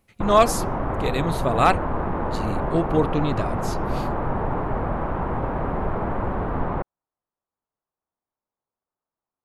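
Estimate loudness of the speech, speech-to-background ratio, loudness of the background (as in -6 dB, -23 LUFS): -23.5 LUFS, 3.5 dB, -27.0 LUFS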